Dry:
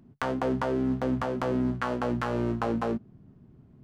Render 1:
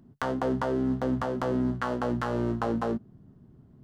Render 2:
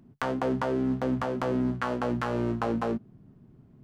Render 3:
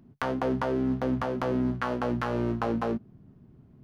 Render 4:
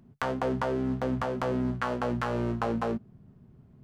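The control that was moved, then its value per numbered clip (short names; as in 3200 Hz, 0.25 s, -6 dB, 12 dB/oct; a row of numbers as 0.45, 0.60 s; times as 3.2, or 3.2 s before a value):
bell, frequency: 2400, 71, 7800, 300 Hz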